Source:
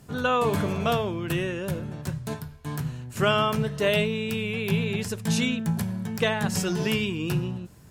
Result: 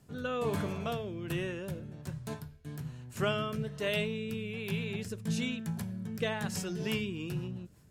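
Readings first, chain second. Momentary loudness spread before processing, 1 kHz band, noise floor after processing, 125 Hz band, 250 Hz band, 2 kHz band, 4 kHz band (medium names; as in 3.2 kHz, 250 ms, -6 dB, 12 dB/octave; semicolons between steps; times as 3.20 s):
10 LU, -12.5 dB, -54 dBFS, -8.5 dB, -8.5 dB, -9.5 dB, -9.0 dB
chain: rotary cabinet horn 1.2 Hz, later 5.5 Hz, at 6.50 s; trim -7 dB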